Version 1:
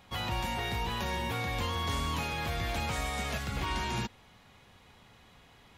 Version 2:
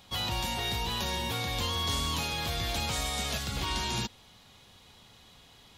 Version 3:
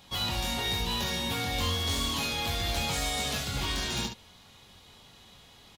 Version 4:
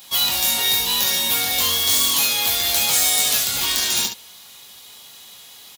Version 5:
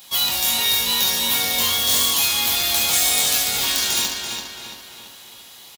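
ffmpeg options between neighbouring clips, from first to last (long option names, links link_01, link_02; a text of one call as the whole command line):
ffmpeg -i in.wav -af "highshelf=frequency=2800:width_type=q:width=1.5:gain=6.5" out.wav
ffmpeg -i in.wav -af "aeval=exprs='0.0596*(abs(mod(val(0)/0.0596+3,4)-2)-1)':channel_layout=same,aecho=1:1:22|69:0.562|0.447" out.wav
ffmpeg -i in.wav -af "aemphasis=mode=production:type=riaa,volume=5.5dB" out.wav
ffmpeg -i in.wav -filter_complex "[0:a]asplit=2[link_01][link_02];[link_02]adelay=337,lowpass=frequency=4500:poles=1,volume=-4dB,asplit=2[link_03][link_04];[link_04]adelay=337,lowpass=frequency=4500:poles=1,volume=0.51,asplit=2[link_05][link_06];[link_06]adelay=337,lowpass=frequency=4500:poles=1,volume=0.51,asplit=2[link_07][link_08];[link_08]adelay=337,lowpass=frequency=4500:poles=1,volume=0.51,asplit=2[link_09][link_10];[link_10]adelay=337,lowpass=frequency=4500:poles=1,volume=0.51,asplit=2[link_11][link_12];[link_12]adelay=337,lowpass=frequency=4500:poles=1,volume=0.51,asplit=2[link_13][link_14];[link_14]adelay=337,lowpass=frequency=4500:poles=1,volume=0.51[link_15];[link_01][link_03][link_05][link_07][link_09][link_11][link_13][link_15]amix=inputs=8:normalize=0,volume=-1dB" out.wav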